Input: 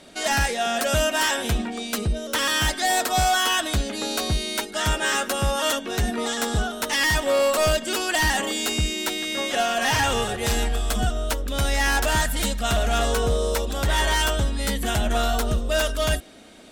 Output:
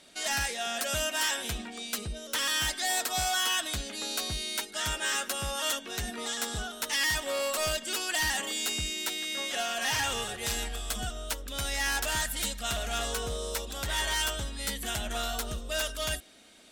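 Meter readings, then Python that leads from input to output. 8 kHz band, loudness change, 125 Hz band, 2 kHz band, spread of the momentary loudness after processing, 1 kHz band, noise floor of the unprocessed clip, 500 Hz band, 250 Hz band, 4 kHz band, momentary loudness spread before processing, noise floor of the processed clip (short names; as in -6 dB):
-4.0 dB, -7.5 dB, -13.5 dB, -7.0 dB, 7 LU, -10.5 dB, -36 dBFS, -12.0 dB, -13.0 dB, -5.0 dB, 5 LU, -45 dBFS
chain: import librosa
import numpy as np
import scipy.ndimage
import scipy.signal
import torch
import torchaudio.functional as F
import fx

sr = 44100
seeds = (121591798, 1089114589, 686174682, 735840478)

y = fx.tilt_shelf(x, sr, db=-5.0, hz=1400.0)
y = y * librosa.db_to_amplitude(-8.5)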